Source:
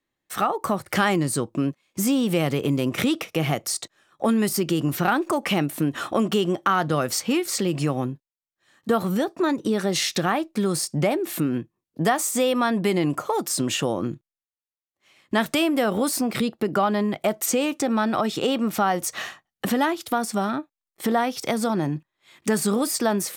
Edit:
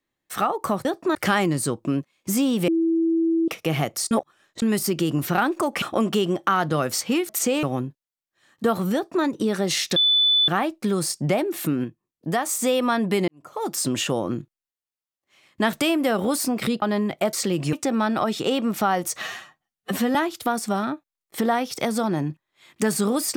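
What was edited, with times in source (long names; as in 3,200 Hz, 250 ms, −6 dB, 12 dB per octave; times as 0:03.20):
0:02.38–0:03.18: beep over 329 Hz −17.5 dBFS
0:03.81–0:04.32: reverse
0:05.52–0:06.01: remove
0:07.48–0:07.88: swap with 0:17.36–0:17.70
0:09.19–0:09.49: duplicate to 0:00.85
0:10.21: insert tone 3,490 Hz −15 dBFS 0.52 s
0:11.57–0:12.22: clip gain −3 dB
0:13.01–0:13.43: fade in quadratic
0:16.55–0:16.85: remove
0:19.19–0:19.81: time-stretch 1.5×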